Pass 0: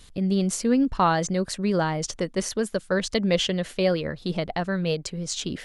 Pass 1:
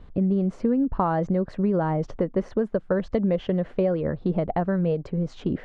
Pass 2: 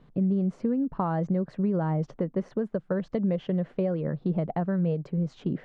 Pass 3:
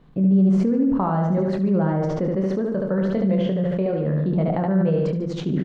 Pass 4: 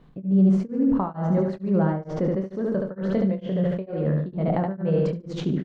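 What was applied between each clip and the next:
low-pass filter 1,000 Hz 12 dB per octave; downward compressor, threshold −26 dBFS, peak gain reduction 9.5 dB; level +6.5 dB
low shelf with overshoot 110 Hz −8.5 dB, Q 3; level −6 dB
double-tracking delay 26 ms −8 dB; repeating echo 73 ms, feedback 50%, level −4 dB; level that may fall only so fast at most 21 dB per second; level +2.5 dB
tremolo along a rectified sine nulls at 2.2 Hz

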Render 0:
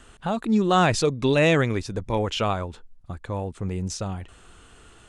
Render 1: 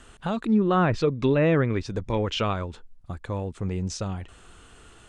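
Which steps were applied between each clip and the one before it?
dynamic equaliser 760 Hz, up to −6 dB, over −38 dBFS, Q 2.3
treble cut that deepens with the level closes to 1,500 Hz, closed at −16.5 dBFS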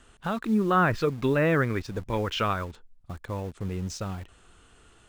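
dynamic equaliser 1,500 Hz, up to +8 dB, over −43 dBFS, Q 1.4
in parallel at −8.5 dB: bit-depth reduction 6 bits, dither none
on the sum: level −6 dB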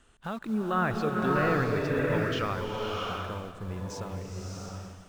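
slow-attack reverb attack 690 ms, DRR −1.5 dB
level −6 dB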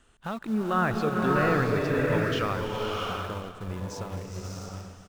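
single-tap delay 419 ms −16.5 dB
in parallel at −11.5 dB: centre clipping without the shift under −33 dBFS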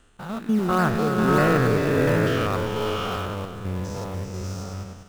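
spectrum averaged block by block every 100 ms
in parallel at −10 dB: sample-and-hold swept by an LFO 27×, swing 100% 3.4 Hz
on the sum: level +4.5 dB

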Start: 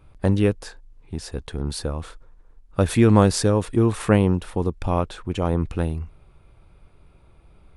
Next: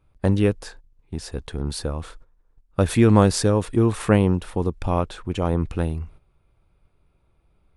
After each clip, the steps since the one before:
noise gate −43 dBFS, range −11 dB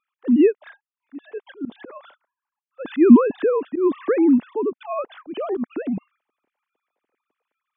three sine waves on the formant tracks
parametric band 250 Hz +10.5 dB 1.2 octaves
volume swells 121 ms
level −4 dB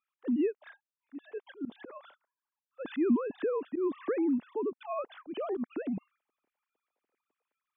downward compressor 2 to 1, threshold −23 dBFS, peak gain reduction 10 dB
level −7.5 dB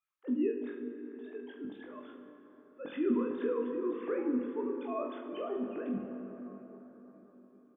on a send: reverse bouncing-ball delay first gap 20 ms, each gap 1.2×, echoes 5
on the sum: dense smooth reverb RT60 4.8 s, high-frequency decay 0.4×, DRR 5 dB
level −5.5 dB

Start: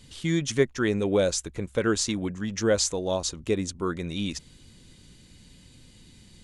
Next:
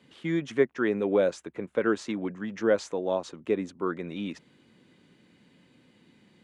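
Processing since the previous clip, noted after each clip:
high-pass filter 89 Hz
three-way crossover with the lows and the highs turned down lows −19 dB, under 180 Hz, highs −20 dB, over 2,600 Hz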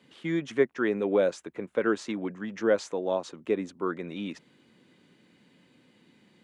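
high-pass filter 130 Hz 6 dB per octave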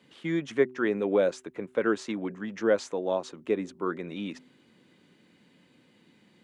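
hum removal 126.9 Hz, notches 3

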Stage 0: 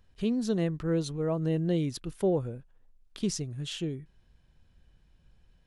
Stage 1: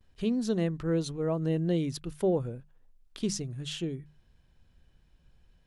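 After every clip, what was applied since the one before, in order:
mains-hum notches 50/100/150/200 Hz
noise gate with hold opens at −57 dBFS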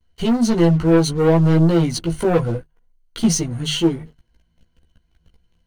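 EQ curve with evenly spaced ripples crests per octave 1.9, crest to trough 11 dB
leveller curve on the samples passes 3
multi-voice chorus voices 6, 0.57 Hz, delay 15 ms, depth 3.2 ms
level +5.5 dB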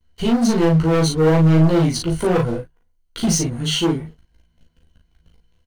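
gain into a clipping stage and back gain 14 dB
double-tracking delay 38 ms −3.5 dB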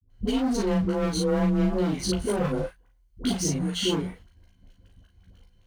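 brickwall limiter −19.5 dBFS, peak gain reduction 10 dB
frequency shifter +25 Hz
all-pass dispersion highs, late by 94 ms, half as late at 510 Hz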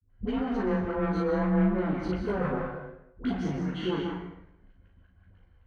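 low-pass with resonance 1,700 Hz, resonance Q 1.7
dense smooth reverb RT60 0.77 s, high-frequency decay 0.8×, pre-delay 115 ms, DRR 3.5 dB
flanger 0.57 Hz, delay 9.6 ms, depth 8.7 ms, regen +80%

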